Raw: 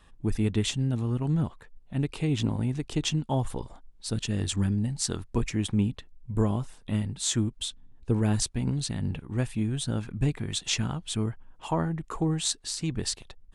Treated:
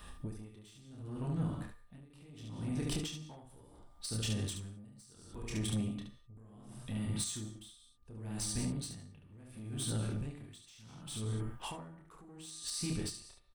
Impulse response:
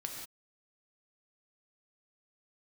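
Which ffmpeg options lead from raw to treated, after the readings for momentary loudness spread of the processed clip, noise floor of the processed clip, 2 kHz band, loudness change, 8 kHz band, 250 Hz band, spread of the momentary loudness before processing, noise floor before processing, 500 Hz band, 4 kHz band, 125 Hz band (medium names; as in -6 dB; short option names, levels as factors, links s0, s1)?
19 LU, -61 dBFS, -11.5 dB, -10.0 dB, -9.0 dB, -12.0 dB, 7 LU, -54 dBFS, -13.5 dB, -10.5 dB, -12.0 dB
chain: -filter_complex "[0:a]highshelf=f=7800:g=11.5,asplit=2[s0][s1];[1:a]atrim=start_sample=2205[s2];[s1][s2]afir=irnorm=-1:irlink=0,volume=0.841[s3];[s0][s3]amix=inputs=2:normalize=0,acompressor=threshold=0.0447:ratio=6,aecho=1:1:28|72:0.631|0.668,alimiter=limit=0.0841:level=0:latency=1:release=459,asoftclip=type=tanh:threshold=0.0422,aeval=exprs='val(0)+0.000794*sin(2*PI*1200*n/s)':c=same,bandreject=f=6900:w=7.2,aeval=exprs='val(0)*pow(10,-23*(0.5-0.5*cos(2*PI*0.7*n/s))/20)':c=same"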